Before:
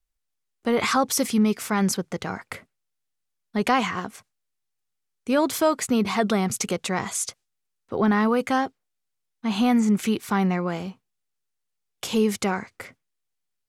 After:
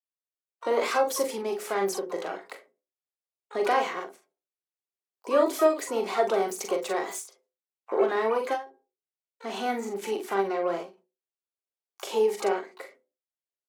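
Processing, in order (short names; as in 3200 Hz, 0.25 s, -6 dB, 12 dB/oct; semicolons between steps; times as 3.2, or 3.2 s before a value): recorder AGC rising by 5.1 dB/s; notches 60/120/180/240/300/360/420/480 Hz; gate -52 dBFS, range -13 dB; ladder high-pass 310 Hz, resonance 45%; bell 600 Hz +8.5 dB 0.61 oct; harmoniser +12 st -12 dB; early reflections 41 ms -6 dB, 51 ms -12.5 dB; on a send at -10 dB: reverb RT60 0.30 s, pre-delay 3 ms; on the sum: ending taper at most 170 dB/s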